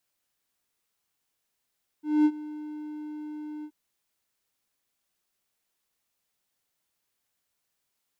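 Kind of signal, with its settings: ADSR triangle 302 Hz, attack 0.222 s, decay 56 ms, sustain -19 dB, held 1.61 s, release 67 ms -14 dBFS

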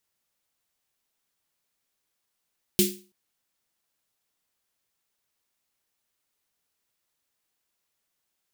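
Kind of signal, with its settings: snare drum length 0.33 s, tones 200 Hz, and 360 Hz, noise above 2500 Hz, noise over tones 0 dB, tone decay 0.36 s, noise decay 0.33 s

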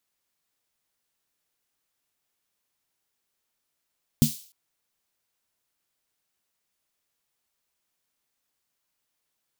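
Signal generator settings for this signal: snare drum length 0.30 s, tones 150 Hz, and 230 Hz, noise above 3300 Hz, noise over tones -11 dB, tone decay 0.15 s, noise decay 0.47 s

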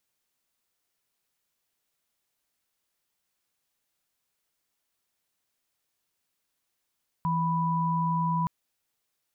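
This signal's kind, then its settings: chord E3/B5 sine, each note -26.5 dBFS 1.22 s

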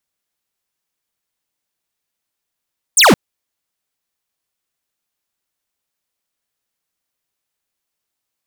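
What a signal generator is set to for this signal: laser zap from 10000 Hz, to 150 Hz, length 0.17 s square, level -8 dB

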